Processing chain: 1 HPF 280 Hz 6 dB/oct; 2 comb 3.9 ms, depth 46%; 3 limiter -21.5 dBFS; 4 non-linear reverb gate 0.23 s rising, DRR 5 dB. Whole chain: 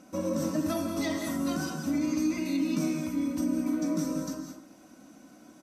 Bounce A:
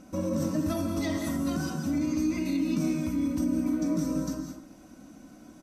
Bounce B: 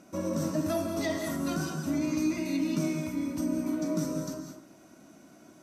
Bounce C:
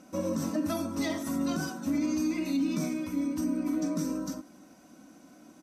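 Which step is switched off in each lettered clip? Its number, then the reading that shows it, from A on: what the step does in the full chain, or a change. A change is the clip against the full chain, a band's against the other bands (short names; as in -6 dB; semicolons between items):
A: 1, crest factor change -1.5 dB; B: 2, 125 Hz band +3.0 dB; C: 4, momentary loudness spread change -1 LU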